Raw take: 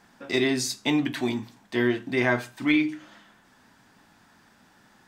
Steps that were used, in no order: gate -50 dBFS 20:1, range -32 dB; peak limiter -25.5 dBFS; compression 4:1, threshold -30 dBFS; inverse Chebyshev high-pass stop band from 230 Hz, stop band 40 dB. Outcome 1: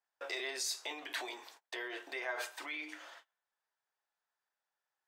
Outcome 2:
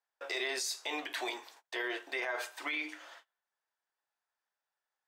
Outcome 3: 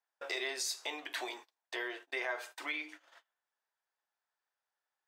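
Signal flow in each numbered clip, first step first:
peak limiter > compression > gate > inverse Chebyshev high-pass; gate > inverse Chebyshev high-pass > peak limiter > compression; compression > inverse Chebyshev high-pass > gate > peak limiter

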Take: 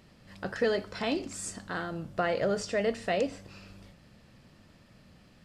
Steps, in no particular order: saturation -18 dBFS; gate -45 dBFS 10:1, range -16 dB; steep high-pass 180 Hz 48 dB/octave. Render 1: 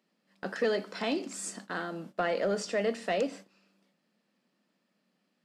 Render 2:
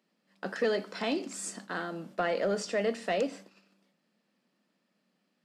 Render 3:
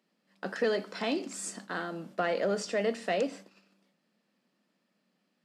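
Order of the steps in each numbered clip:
steep high-pass > saturation > gate; gate > steep high-pass > saturation; saturation > gate > steep high-pass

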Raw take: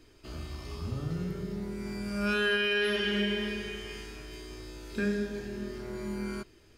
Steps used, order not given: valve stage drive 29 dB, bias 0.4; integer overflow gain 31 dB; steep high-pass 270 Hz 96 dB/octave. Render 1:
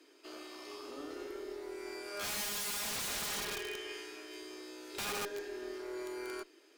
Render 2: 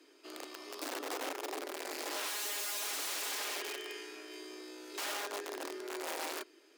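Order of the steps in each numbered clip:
steep high-pass > integer overflow > valve stage; integer overflow > valve stage > steep high-pass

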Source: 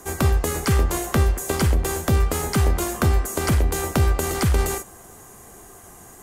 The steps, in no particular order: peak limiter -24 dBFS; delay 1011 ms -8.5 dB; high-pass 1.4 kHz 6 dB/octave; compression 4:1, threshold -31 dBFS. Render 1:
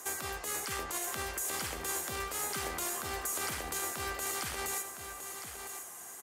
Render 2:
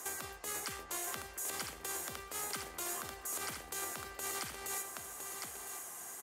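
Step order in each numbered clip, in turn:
high-pass > compression > peak limiter > delay; compression > delay > peak limiter > high-pass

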